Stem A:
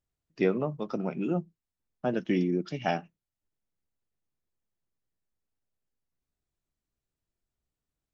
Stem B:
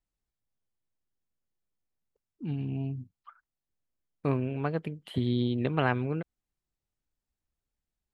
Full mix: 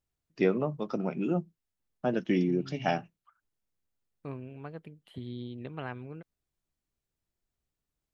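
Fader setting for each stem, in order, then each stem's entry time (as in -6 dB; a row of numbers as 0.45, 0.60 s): 0.0, -12.0 dB; 0.00, 0.00 s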